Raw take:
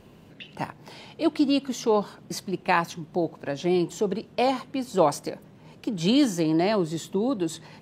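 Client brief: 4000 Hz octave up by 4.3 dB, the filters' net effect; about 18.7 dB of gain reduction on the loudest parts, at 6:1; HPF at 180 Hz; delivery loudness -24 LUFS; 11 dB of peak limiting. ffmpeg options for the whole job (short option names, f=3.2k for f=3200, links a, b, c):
-af "highpass=180,equalizer=f=4k:t=o:g=5.5,acompressor=threshold=-37dB:ratio=6,volume=18.5dB,alimiter=limit=-12.5dB:level=0:latency=1"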